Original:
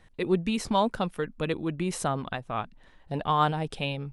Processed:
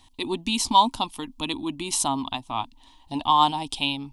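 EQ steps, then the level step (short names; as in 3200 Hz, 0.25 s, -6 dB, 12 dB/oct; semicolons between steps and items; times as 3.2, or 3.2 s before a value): EQ curve 100 Hz 0 dB, 180 Hz -11 dB, 270 Hz +9 dB, 490 Hz -15 dB, 950 Hz +12 dB, 1500 Hz -13 dB, 3200 Hz +12 dB; 0.0 dB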